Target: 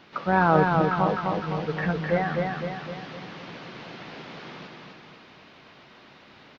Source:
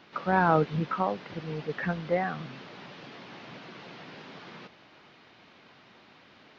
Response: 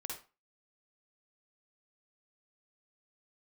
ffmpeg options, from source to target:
-filter_complex "[0:a]lowshelf=frequency=75:gain=6.5,asplit=2[link_01][link_02];[link_02]aecho=0:1:255|510|765|1020|1275|1530|1785:0.668|0.354|0.188|0.0995|0.0527|0.0279|0.0148[link_03];[link_01][link_03]amix=inputs=2:normalize=0,volume=2.5dB"

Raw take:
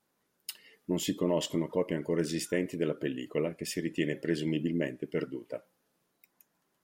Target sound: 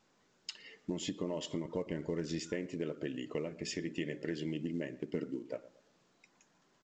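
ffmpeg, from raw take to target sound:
ffmpeg -i in.wav -filter_complex "[0:a]asettb=1/sr,asplit=3[link_01][link_02][link_03];[link_01]atrim=end=3.494[link_04];[link_02]atrim=start=3.49:end=4.33,asetpts=PTS-STARTPTS,afade=type=in:duration=0.004:curve=qsin,afade=type=out:start_time=0.836:duration=0.004:curve=qsin,bandreject=frequency=60:width_type=h:width=6,bandreject=frequency=120:width_type=h:width=6,bandreject=frequency=180:width_type=h:width=6,bandreject=frequency=240:width_type=h:width=6,bandreject=frequency=300:width_type=h:width=6,bandreject=frequency=360:width_type=h:width=6,bandreject=frequency=420:width_type=h:width=6[link_05];[link_03]atrim=start=4.326[link_06];[link_04][link_05]acrossfade=duration=0.004:curve1=hsin:curve2=qsin[link_07];[link_07][link_06]acrossfade=duration=0.004:curve1=qsin:curve2=hsin,asettb=1/sr,asplit=3[link_08][link_09][link_10];[link_08]atrim=end=5.064[link_11];[link_09]atrim=start=5.06:end=5.52,asetpts=PTS-STARTPTS,afade=type=in:duration=0.004:curve=qsin,afade=type=out:start_time=0.456:duration=0.004:curve=qsin,equalizer=frequency=240:width_type=o:width=1.2:gain=10[link_12];[link_10]atrim=start=5.516[link_13];[link_11][link_12]acrossfade=duration=0.004:curve1=hsin:curve2=qsin[link_14];[link_14][link_13]acrossfade=duration=0.004:curve1=qsin:curve2=hsin,acompressor=threshold=-40dB:ratio=4,asettb=1/sr,asplit=3[link_15][link_16][link_17];[link_15]atrim=end=1.654[link_18];[link_16]atrim=start=1.65:end=2.4,asetpts=PTS-STARTPTS,afade=type=in:duration=0.004:curve=qsin,afade=type=out:start_time=0.746:duration=0.004:curve=qsin,lowshelf=frequency=89:gain=11[link_19];[link_17]atrim=start=2.396[link_20];[link_18][link_19]acrossfade=duration=0.004:curve1=hsin:curve2=qsin[link_21];[link_21][link_20]acrossfade=duration=0.004:curve1=qsin:curve2=hsin,asplit=2[link_22][link_23];[link_23]adelay=116,lowpass=frequency=1300:poles=1,volume=-17dB,asplit=2[link_24][link_25];[link_25]adelay=116,lowpass=frequency=1300:poles=1,volume=0.35,asplit=2[link_26][link_27];[link_27]adelay=116,lowpass=frequency=1300:poles=1,volume=0.35[link_28];[link_22][link_24][link_26][link_28]amix=inputs=4:normalize=0,volume=4dB" -ar 16000 -c:a pcm_mulaw out.wav

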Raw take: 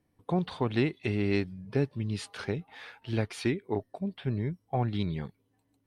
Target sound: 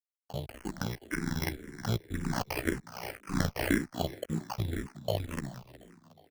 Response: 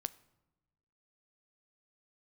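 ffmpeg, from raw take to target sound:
-filter_complex "[0:a]aemphasis=mode=production:type=50kf,asetrate=36028,aresample=44100,atempo=1.22405,asplit=2[link_01][link_02];[link_02]acompressor=threshold=-38dB:ratio=12,volume=2dB[link_03];[link_01][link_03]amix=inputs=2:normalize=0,tiltshelf=frequency=1300:gain=-3,dynaudnorm=framelen=210:gausssize=13:maxgain=7.5dB,aeval=exprs='sgn(val(0))*max(abs(val(0))-0.00335,0)':channel_layout=same,tremolo=f=61:d=0.919,atempo=0.93,acrusher=samples=12:mix=1:aa=0.000001,aeval=exprs='sgn(val(0))*max(abs(val(0))-0.00668,0)':channel_layout=same,asplit=2[link_04][link_05];[link_05]asplit=4[link_06][link_07][link_08][link_09];[link_06]adelay=364,afreqshift=39,volume=-16dB[link_10];[link_07]adelay=728,afreqshift=78,volume=-22.9dB[link_11];[link_08]adelay=1092,afreqshift=117,volume=-29.9dB[link_12];[link_09]adelay=1456,afreqshift=156,volume=-36.8dB[link_13];[link_10][link_11][link_12][link_13]amix=inputs=4:normalize=0[link_14];[link_04][link_14]amix=inputs=2:normalize=0,asplit=2[link_15][link_16];[link_16]afreqshift=-1.9[link_17];[link_15][link_17]amix=inputs=2:normalize=1"

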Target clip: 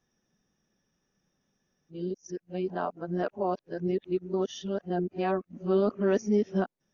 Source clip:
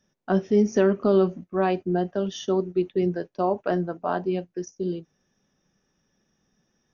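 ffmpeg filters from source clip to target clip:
ffmpeg -i in.wav -af "areverse,volume=-5.5dB" out.wav

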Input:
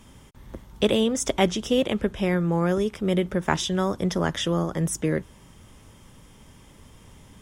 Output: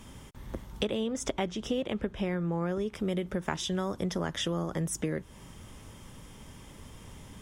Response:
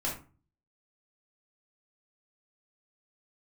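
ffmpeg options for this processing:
-filter_complex "[0:a]asettb=1/sr,asplit=3[link_01][link_02][link_03];[link_01]atrim=end=0.844[link_04];[link_02]atrim=start=0.84:end=2.94,asetpts=PTS-STARTPTS,afade=type=in:duration=0.004:curve=qsin,afade=type=out:start_time=2.096:duration=0.004:curve=qsin,highshelf=frequency=5600:gain=-9.5[link_05];[link_03]atrim=start=2.936[link_06];[link_04][link_05]acrossfade=duration=0.004:curve1=hsin:curve2=qsin[link_07];[link_07][link_06]acrossfade=duration=0.004:curve1=qsin:curve2=hsin,acompressor=threshold=-31dB:ratio=4,volume=1.5dB"

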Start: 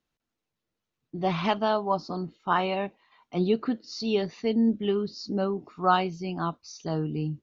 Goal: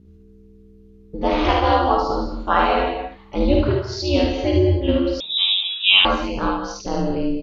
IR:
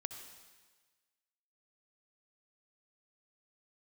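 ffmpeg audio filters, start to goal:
-filter_complex "[0:a]aeval=exprs='val(0)+0.00224*(sin(2*PI*60*n/s)+sin(2*PI*2*60*n/s)/2+sin(2*PI*3*60*n/s)/3+sin(2*PI*4*60*n/s)/4+sin(2*PI*5*60*n/s)/5)':channel_layout=same,aeval=exprs='val(0)*sin(2*PI*140*n/s)':channel_layout=same,aecho=1:1:52|75:0.631|0.668[link_01];[1:a]atrim=start_sample=2205,atrim=end_sample=6615,asetrate=28224,aresample=44100[link_02];[link_01][link_02]afir=irnorm=-1:irlink=0,asettb=1/sr,asplit=3[link_03][link_04][link_05];[link_03]atrim=end=5.204[link_06];[link_04]atrim=start=5.2:end=6.05,asetpts=PTS-STARTPTS,afade=type=in:duration=0.004:curve=qsin,afade=type=out:start_time=0.846:duration=0.004:curve=qsin,lowpass=frequency=3300:width_type=q:width=0.5098,lowpass=frequency=3300:width_type=q:width=0.6013,lowpass=frequency=3300:width_type=q:width=0.9,lowpass=frequency=3300:width_type=q:width=2.563,afreqshift=-3900[link_07];[link_05]atrim=start=6.046[link_08];[link_06][link_07]acrossfade=duration=0.004:curve1=hsin:curve2=qsin[link_09];[link_09][link_08]acrossfade=duration=0.004:curve1=qsin:curve2=hsin,volume=8.5dB"

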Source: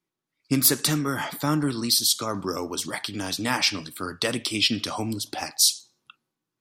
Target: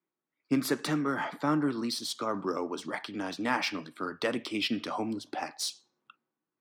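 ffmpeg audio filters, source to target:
ffmpeg -i in.wav -filter_complex "[0:a]acrossover=split=170 2400:gain=0.1 1 0.251[link_01][link_02][link_03];[link_01][link_02][link_03]amix=inputs=3:normalize=0,adynamicsmooth=sensitivity=5.5:basefreq=6700,volume=-2dB" out.wav

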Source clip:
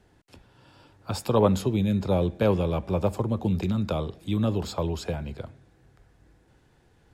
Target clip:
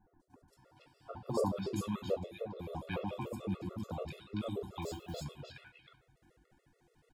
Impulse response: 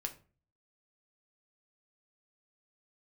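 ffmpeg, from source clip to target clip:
-filter_complex "[0:a]asettb=1/sr,asplit=3[link_01][link_02][link_03];[link_01]atrim=end=1.124[link_04];[link_02]atrim=start=1.12:end=1.53,asetpts=PTS-STARTPTS,afade=type=in:duration=0.004:curve=qsin,afade=type=out:start_time=0.406:duration=0.004:curve=qsin,highshelf=frequency=12000:gain=-10.5[link_05];[link_03]atrim=start=1.526[link_06];[link_04][link_05]acrossfade=duration=0.004:curve1=hsin:curve2=qsin[link_07];[link_07][link_06]acrossfade=duration=0.004:curve1=qsin:curve2=hsin,acrossover=split=1300|4600[link_08][link_09][link_10];[link_10]adelay=200[link_11];[link_09]adelay=480[link_12];[link_08][link_12][link_11]amix=inputs=3:normalize=0,asettb=1/sr,asplit=3[link_13][link_14][link_15];[link_13]atrim=end=2.144[link_16];[link_14]atrim=start=2.14:end=2.75,asetpts=PTS-STARTPTS,afade=type=in:duration=0.004:curve=qsin,afade=type=out:start_time=0.606:duration=0.004:curve=qsin,acompressor=threshold=-27dB:ratio=12[link_17];[link_15]atrim=start=2.746[link_18];[link_16][link_17]acrossfade=duration=0.004:curve1=hsin:curve2=qsin[link_19];[link_19][link_18]acrossfade=duration=0.004:curve1=qsin:curve2=hsin,flanger=delay=9.9:depth=4.7:regen=-72:speed=0.45:shape=triangular,agate=range=-33dB:threshold=-55dB:ratio=3:detection=peak[link_20];[1:a]atrim=start_sample=2205[link_21];[link_20][link_21]afir=irnorm=-1:irlink=0,asettb=1/sr,asplit=3[link_22][link_23][link_24];[link_22]atrim=end=4.824[link_25];[link_23]atrim=start=4.82:end=5.24,asetpts=PTS-STARTPTS,afade=type=in:duration=0.004:curve=qsin,afade=type=out:start_time=0.416:duration=0.004:curve=qsin,acrusher=bits=7:mode=log:mix=0:aa=0.000001[link_26];[link_24]atrim=start=5.236[link_27];[link_25][link_26]acrossfade=duration=0.004:curve1=hsin:curve2=qsin[link_28];[link_28][link_27]acrossfade=duration=0.004:curve1=qsin:curve2=hsin,lowshelf=frequency=330:gain=-7.5,acompressor=mode=upward:threshold=-52dB:ratio=2.5,afftfilt=real='re*gt(sin(2*PI*6.9*pts/sr)*(1-2*mod(floor(b*sr/1024/360),2)),0)':imag='im*gt(sin(2*PI*6.9*pts/sr)*(1-2*mod(floor(b*sr/1024/360),2)),0)':win_size=1024:overlap=0.75,volume=1dB"

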